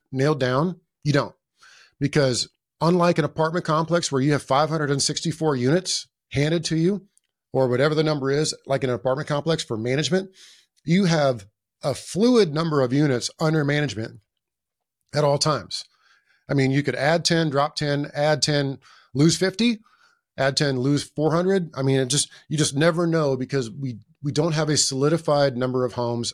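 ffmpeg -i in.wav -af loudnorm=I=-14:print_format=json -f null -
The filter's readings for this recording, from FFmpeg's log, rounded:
"input_i" : "-22.4",
"input_tp" : "-5.6",
"input_lra" : "2.3",
"input_thresh" : "-32.8",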